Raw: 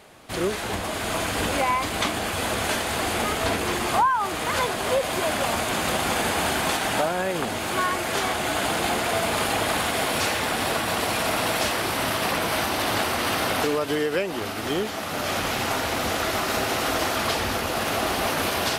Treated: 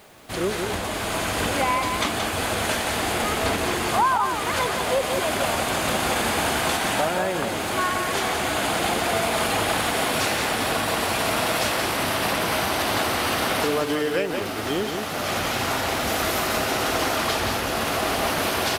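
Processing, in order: 16.07–16.47 high shelf 11000 Hz +8.5 dB; added noise white -60 dBFS; echo 0.176 s -5.5 dB

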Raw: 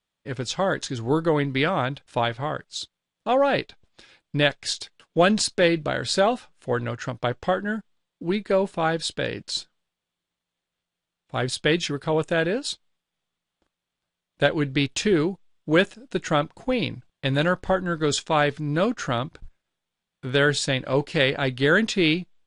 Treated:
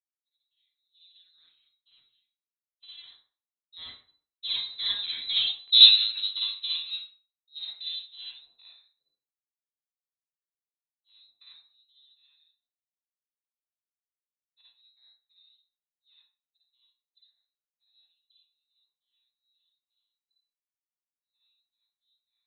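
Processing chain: Doppler pass-by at 5.75, 49 m/s, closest 2.7 m; sample leveller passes 2; tilt -4.5 dB/oct; inverted band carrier 4000 Hz; expander -51 dBFS; AGC gain up to 3 dB; reverb RT60 0.45 s, pre-delay 42 ms, DRR -7 dB; gain -5.5 dB

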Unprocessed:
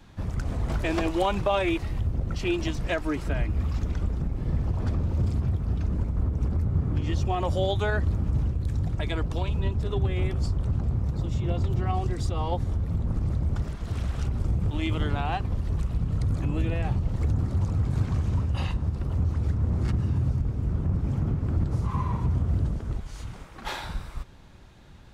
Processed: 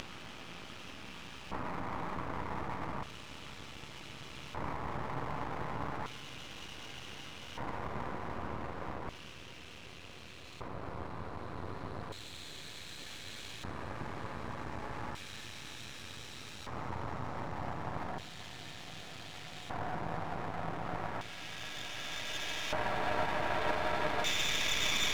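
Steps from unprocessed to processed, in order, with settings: HPF 140 Hz 6 dB/oct; limiter -23.5 dBFS, peak gain reduction 10 dB; Paulstretch 30×, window 0.25 s, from 8.22; LFO band-pass square 0.33 Hz 1000–3000 Hz; half-wave rectifier; gain +18 dB

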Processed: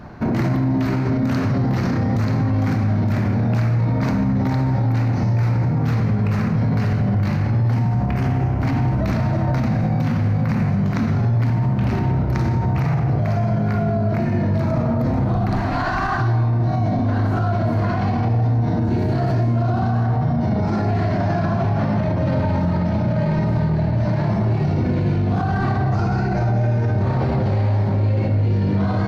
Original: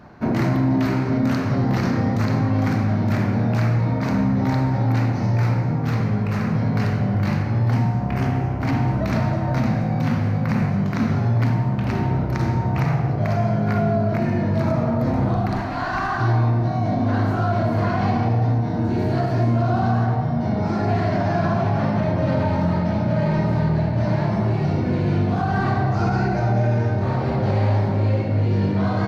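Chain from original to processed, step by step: low shelf 130 Hz +7 dB; limiter -17.5 dBFS, peak gain reduction 10 dB; gain +5 dB

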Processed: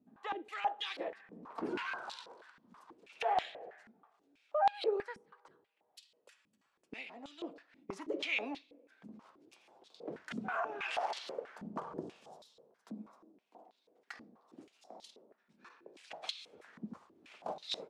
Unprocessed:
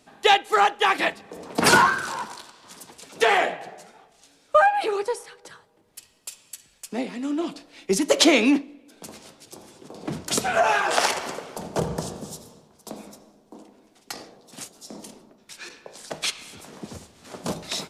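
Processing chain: limiter -15 dBFS, peak gain reduction 11 dB; stepped band-pass 6.2 Hz 220–3800 Hz; gain -2 dB

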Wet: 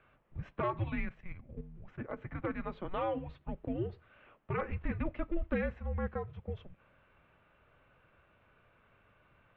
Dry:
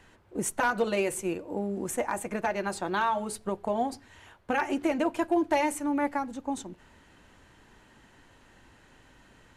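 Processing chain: 1.05–2.22 level quantiser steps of 10 dB; mistuned SSB -360 Hz 220–3400 Hz; gain -7 dB

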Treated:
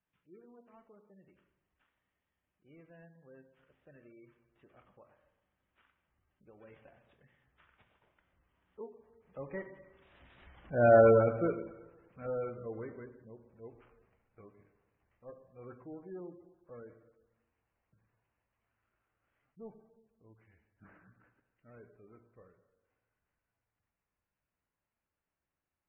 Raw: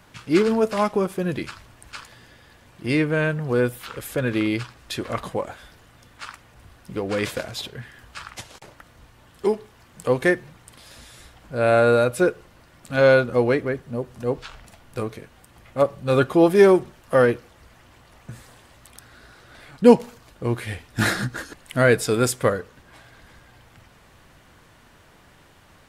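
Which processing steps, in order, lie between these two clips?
CVSD 16 kbps; Doppler pass-by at 10.91, 24 m/s, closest 4.5 m; plate-style reverb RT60 1.1 s, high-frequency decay 0.8×, DRR 6.5 dB; spectral gate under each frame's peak -25 dB strong; gain -2.5 dB

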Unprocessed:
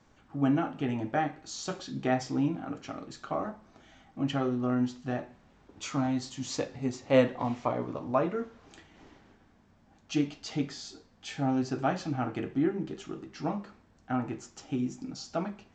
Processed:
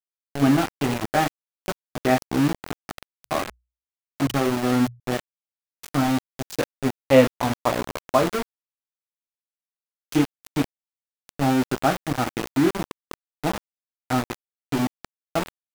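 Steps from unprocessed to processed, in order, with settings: sample gate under -29.5 dBFS; 3.21–5 notches 60/120 Hz; gain +8 dB

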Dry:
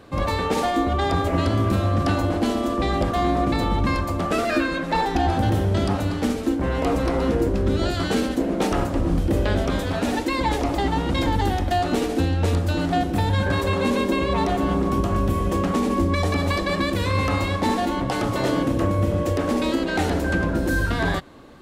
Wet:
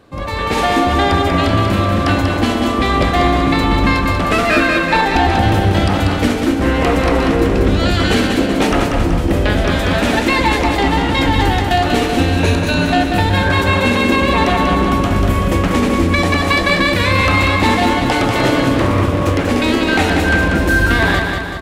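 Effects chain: 12.32–12.85 ripple EQ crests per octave 1.5, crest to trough 9 dB; feedback echo 0.19 s, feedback 56%, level -5 dB; AGC gain up to 11.5 dB; dynamic EQ 2300 Hz, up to +7 dB, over -33 dBFS, Q 0.95; 18.74–19.51 Doppler distortion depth 0.34 ms; gain -1.5 dB

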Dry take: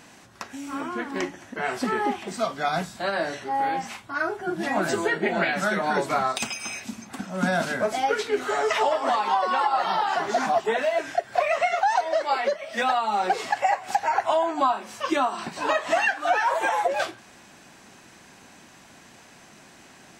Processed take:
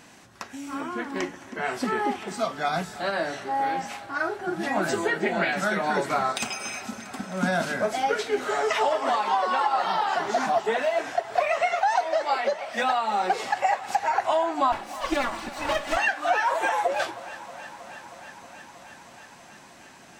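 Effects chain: 14.72–15.97 minimum comb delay 3.5 ms; thinning echo 0.317 s, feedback 83%, high-pass 220 Hz, level -17.5 dB; gain -1 dB

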